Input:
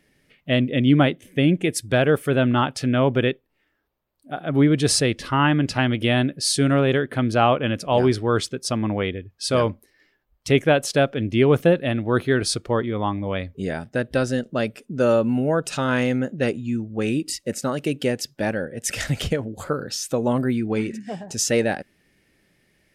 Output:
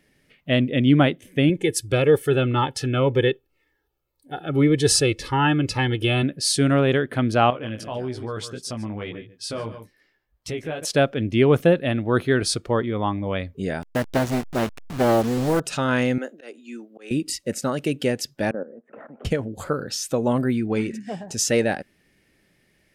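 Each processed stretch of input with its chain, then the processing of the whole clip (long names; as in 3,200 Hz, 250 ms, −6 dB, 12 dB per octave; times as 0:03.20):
0:01.49–0:06.23: comb filter 2.3 ms, depth 66% + phaser whose notches keep moving one way falling 1.9 Hz
0:07.50–0:10.85: chorus effect 1.7 Hz, delay 16 ms, depth 2.9 ms + single-tap delay 143 ms −17.5 dB + downward compressor 3 to 1, threshold −28 dBFS
0:13.82–0:15.60: hold until the input has moved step −28 dBFS + highs frequency-modulated by the lows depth 0.74 ms
0:16.18–0:17.11: Bessel high-pass filter 450 Hz, order 8 + volume swells 333 ms
0:18.51–0:19.25: elliptic band-pass filter 220–1,200 Hz, stop band 60 dB + output level in coarse steps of 14 dB
whole clip: no processing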